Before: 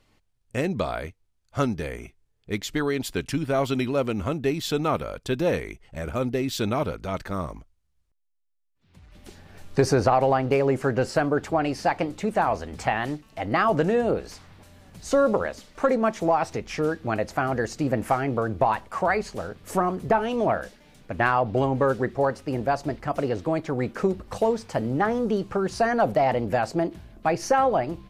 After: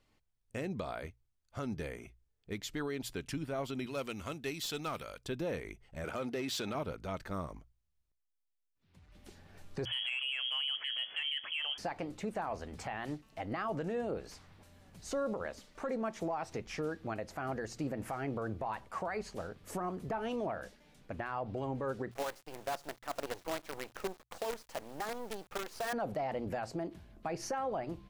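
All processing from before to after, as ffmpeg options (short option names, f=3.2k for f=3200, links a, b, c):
-filter_complex "[0:a]asettb=1/sr,asplit=3[a][b][c];[a]atrim=end=3.864[d];[b]atrim=start=3.86:end=5.21,asetpts=PTS-STARTPTS,afade=t=in:d=0.004:c=qsin,afade=t=out:st=1.346:d=0.004:c=qsin,tiltshelf=f=1.5k:g=-7,aeval=exprs='clip(val(0),-1,0.0794)':c=same[e];[c]atrim=start=5.206[f];[d][e]acrossfade=d=0.004:c1=hsin:c2=qsin[g];[g][f]acrossfade=d=0.004:c1=qsin:c2=hsin,asettb=1/sr,asplit=3[h][i][j];[h]atrim=end=6.044[k];[i]atrim=start=6.04:end=6.75,asetpts=PTS-STARTPTS,afade=t=in:d=0.004:c=qsin,afade=t=out:st=0.706:d=0.004:c=qsin,asplit=2[l][m];[m]highpass=f=720:p=1,volume=14dB,asoftclip=type=tanh:threshold=-13dB[n];[l][n]amix=inputs=2:normalize=0,lowpass=f=7.4k:p=1,volume=-6dB,acompressor=threshold=-24dB:ratio=4:attack=3.2:release=140:knee=1:detection=peak,highpass=100[o];[j]atrim=start=6.746[p];[k][o]acrossfade=d=0.004:c1=hsin:c2=qsin[q];[q][p]acrossfade=d=0.004:c1=qsin:c2=hsin,asettb=1/sr,asplit=3[r][s][t];[r]atrim=end=9.854[u];[s]atrim=start=9.85:end=11.78,asetpts=PTS-STARTPTS,afade=t=in:d=0.004:c=qsin,afade=t=out:st=1.926:d=0.004:c=qsin,lowpass=f=2.9k:t=q:w=0.5098,lowpass=f=2.9k:t=q:w=0.6013,lowpass=f=2.9k:t=q:w=0.9,lowpass=f=2.9k:t=q:w=2.563,afreqshift=-3400,acontrast=33[v];[t]atrim=start=11.776[w];[u][v]acrossfade=d=0.004:c1=hsin:c2=qsin[x];[x][w]acrossfade=d=0.004:c1=qsin:c2=hsin,asettb=1/sr,asplit=3[y][z][aa];[y]atrim=end=22.114[ab];[z]atrim=start=22.11:end=25.93,asetpts=PTS-STARTPTS,afade=t=in:d=0.004:c=qsin,afade=t=out:st=3.816:d=0.004:c=qsin,highpass=460,acrusher=bits=5:dc=4:mix=0:aa=0.000001[ac];[aa]atrim=start=25.926[ad];[ab][ac]acrossfade=d=0.004:c1=hsin:c2=qsin[ae];[ae][ad]acrossfade=d=0.004:c1=qsin:c2=hsin,bandreject=f=60:t=h:w=6,bandreject=f=120:t=h:w=6,alimiter=limit=-19dB:level=0:latency=1:release=115,volume=-9dB"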